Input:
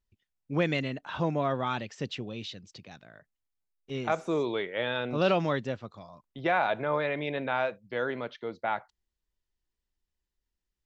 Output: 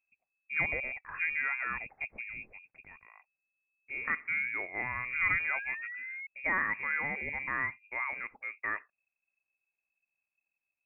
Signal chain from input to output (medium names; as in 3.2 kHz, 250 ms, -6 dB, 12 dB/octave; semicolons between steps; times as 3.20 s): painted sound fall, 5.53–6.27 s, 410–1100 Hz -37 dBFS; frequency inversion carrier 2.6 kHz; trim -4.5 dB